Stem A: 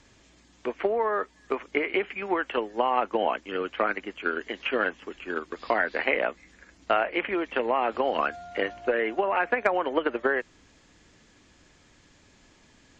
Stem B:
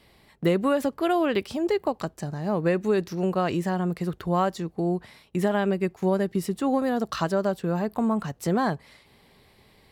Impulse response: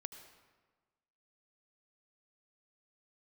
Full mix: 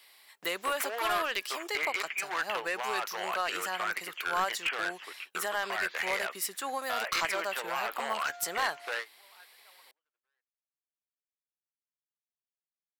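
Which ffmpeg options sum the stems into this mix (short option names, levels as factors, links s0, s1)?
-filter_complex "[0:a]alimiter=limit=0.119:level=0:latency=1:release=15,aeval=exprs='0.075*(abs(mod(val(0)/0.075+3,4)-2)-1)':c=same,volume=1.26[s0];[1:a]aemphasis=mode=production:type=50kf,volume=1.06,asplit=2[s1][s2];[s2]apad=whole_len=572883[s3];[s0][s3]sidechaingate=range=0.002:threshold=0.00316:ratio=16:detection=peak[s4];[s4][s1]amix=inputs=2:normalize=0,highpass=1100,highshelf=f=5900:g=-4,aeval=exprs='clip(val(0),-1,0.0631)':c=same"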